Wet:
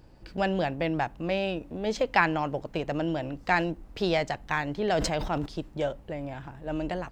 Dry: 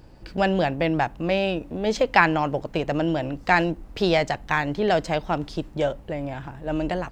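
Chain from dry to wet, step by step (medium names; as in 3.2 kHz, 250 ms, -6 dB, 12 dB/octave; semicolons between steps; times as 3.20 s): 4.90–5.46 s: decay stretcher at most 41 dB/s; trim -5.5 dB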